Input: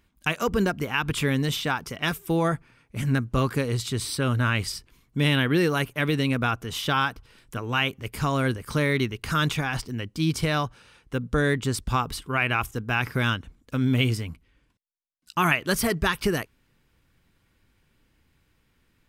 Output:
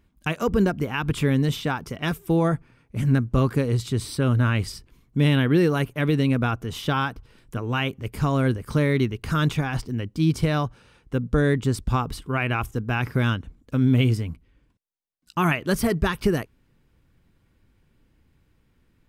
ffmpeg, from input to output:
-af "tiltshelf=f=820:g=4.5"

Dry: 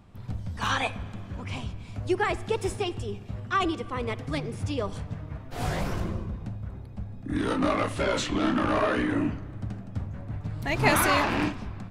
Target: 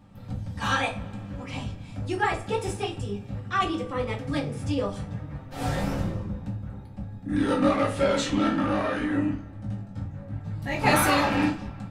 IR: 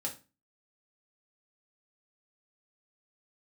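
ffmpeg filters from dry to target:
-filter_complex "[0:a]asettb=1/sr,asplit=3[a][b][c];[a]atrim=end=8.484[d];[b]atrim=start=8.48:end=10.82,asetpts=PTS-STARTPTS,afade=t=in:d=0.004:c=qsin,afade=t=out:st=2.336:d=0.004:c=qsin,flanger=delay=18.5:depth=2.5:speed=1[e];[c]atrim=start=10.816[f];[d][e]acrossfade=d=0.004:c1=hsin:c2=qsin[g];[g][f]acrossfade=d=0.004:c1=qsin:c2=hsin[h];[1:a]atrim=start_sample=2205[i];[h][i]afir=irnorm=-1:irlink=0"

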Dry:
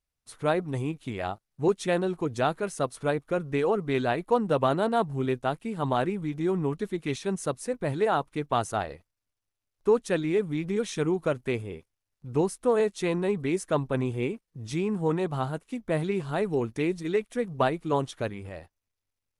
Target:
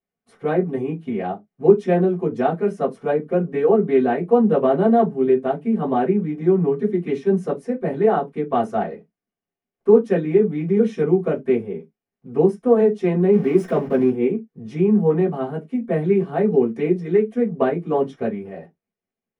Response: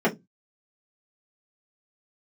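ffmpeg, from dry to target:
-filter_complex "[0:a]asettb=1/sr,asplit=3[a][b][c];[a]atrim=end=13.334[d];[b]atrim=start=13.33:end=14.1,asetpts=PTS-STARTPTS,afade=t=in:d=0.004:c=qsin,afade=t=out:st=0.766:d=0.004:c=qsin,aeval=exprs='val(0)+0.5*0.0266*sgn(val(0))':c=same[e];[c]atrim=start=14.096[f];[d][e]acrossfade=d=0.004:c1=hsin:c2=qsin[g];[g][f]acrossfade=d=0.004:c1=qsin:c2=hsin[h];[1:a]atrim=start_sample=2205,afade=t=out:st=0.16:d=0.01,atrim=end_sample=7497[i];[h][i]afir=irnorm=-1:irlink=0,volume=-13dB"

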